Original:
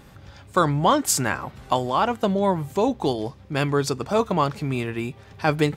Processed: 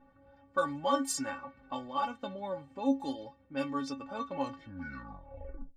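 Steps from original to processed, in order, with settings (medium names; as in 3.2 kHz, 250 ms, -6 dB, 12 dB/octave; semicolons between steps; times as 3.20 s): tape stop on the ending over 1.47 s; inharmonic resonator 270 Hz, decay 0.21 s, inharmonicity 0.008; level-controlled noise filter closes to 1.4 kHz, open at -26.5 dBFS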